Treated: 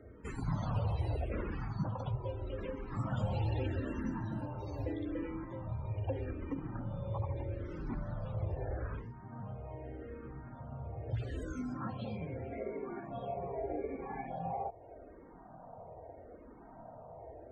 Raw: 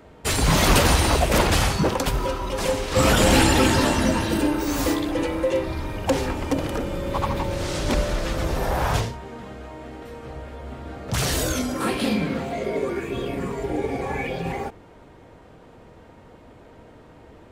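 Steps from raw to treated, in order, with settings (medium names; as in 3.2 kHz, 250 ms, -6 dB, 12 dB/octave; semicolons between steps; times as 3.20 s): peaking EQ 110 Hz +13.5 dB 0.61 oct, from 12.59 s 690 Hz; compression 2:1, threshold -34 dBFS, peak gain reduction 13.5 dB; loudest bins only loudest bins 64; tape spacing loss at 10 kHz 20 dB; barber-pole phaser -0.8 Hz; trim -4.5 dB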